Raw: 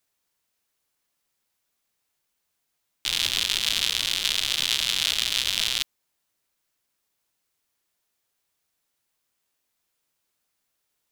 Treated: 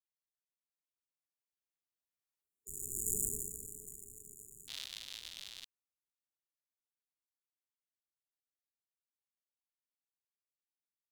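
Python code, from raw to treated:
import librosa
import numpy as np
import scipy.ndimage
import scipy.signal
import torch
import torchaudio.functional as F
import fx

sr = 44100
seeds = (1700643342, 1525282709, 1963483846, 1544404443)

y = fx.doppler_pass(x, sr, speed_mps=43, closest_m=5.0, pass_at_s=3.18)
y = fx.spec_erase(y, sr, start_s=2.42, length_s=2.26, low_hz=450.0, high_hz=5700.0)
y = fx.formant_shift(y, sr, semitones=3)
y = y * librosa.db_to_amplitude(1.0)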